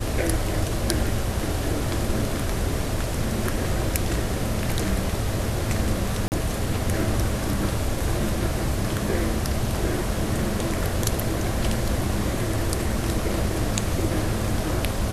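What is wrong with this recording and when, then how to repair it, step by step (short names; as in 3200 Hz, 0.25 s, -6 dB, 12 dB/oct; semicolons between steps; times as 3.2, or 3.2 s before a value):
6.28–6.32 gap 39 ms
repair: interpolate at 6.28, 39 ms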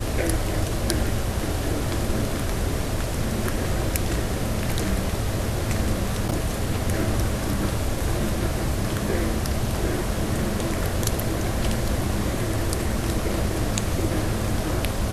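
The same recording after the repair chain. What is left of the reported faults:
none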